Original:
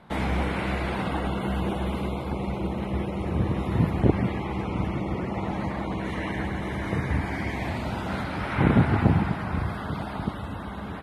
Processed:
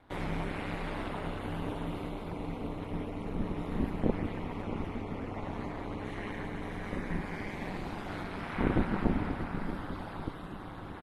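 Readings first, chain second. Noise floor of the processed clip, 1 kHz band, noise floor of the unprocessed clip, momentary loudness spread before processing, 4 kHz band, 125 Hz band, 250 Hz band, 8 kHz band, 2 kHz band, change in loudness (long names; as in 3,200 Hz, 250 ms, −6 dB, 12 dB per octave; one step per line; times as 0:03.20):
−43 dBFS, −8.5 dB, −34 dBFS, 8 LU, −8.5 dB, −11.5 dB, −8.0 dB, can't be measured, −8.5 dB, −9.0 dB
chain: ring modulation 99 Hz
single-tap delay 633 ms −10.5 dB
level −6 dB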